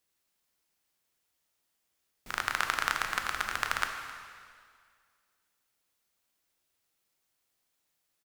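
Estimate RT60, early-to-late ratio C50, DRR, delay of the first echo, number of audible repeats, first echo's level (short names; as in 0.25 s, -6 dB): 2.0 s, 5.5 dB, 4.5 dB, 0.262 s, 1, -20.0 dB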